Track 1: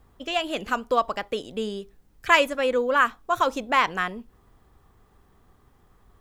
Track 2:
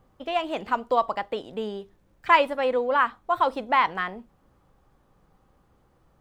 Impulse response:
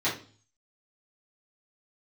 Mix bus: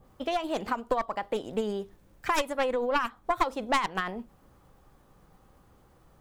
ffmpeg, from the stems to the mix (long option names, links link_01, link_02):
-filter_complex "[0:a]aeval=exprs='0.422*(cos(1*acos(clip(val(0)/0.422,-1,1)))-cos(1*PI/2))+0.211*(cos(4*acos(clip(val(0)/0.422,-1,1)))-cos(4*PI/2))':channel_layout=same,aeval=exprs='val(0)*pow(10,-24*(0.5-0.5*cos(2*PI*8.8*n/s))/20)':channel_layout=same,volume=-9.5dB[link_01];[1:a]acompressor=threshold=-29dB:ratio=12,adynamicequalizer=threshold=0.00447:dfrequency=1500:dqfactor=0.7:tfrequency=1500:tqfactor=0.7:attack=5:release=100:ratio=0.375:range=1.5:mode=cutabove:tftype=highshelf,volume=3dB[link_02];[link_01][link_02]amix=inputs=2:normalize=0,highshelf=frequency=6300:gain=6.5"